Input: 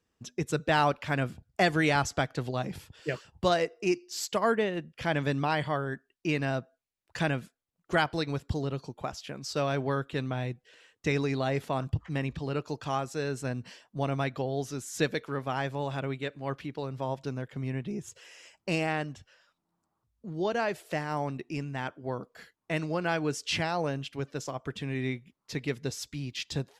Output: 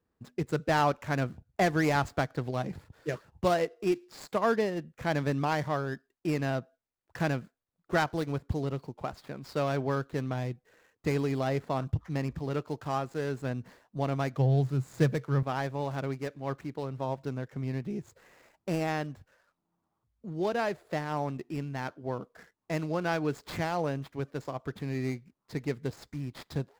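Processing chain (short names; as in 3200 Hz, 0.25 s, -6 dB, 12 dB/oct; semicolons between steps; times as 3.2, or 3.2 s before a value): median filter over 15 samples; 14.38–15.43 bell 130 Hz +14 dB 0.57 oct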